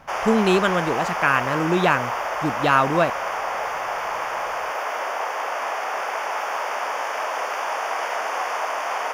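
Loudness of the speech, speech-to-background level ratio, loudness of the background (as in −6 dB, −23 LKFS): −21.5 LKFS, 4.5 dB, −26.0 LKFS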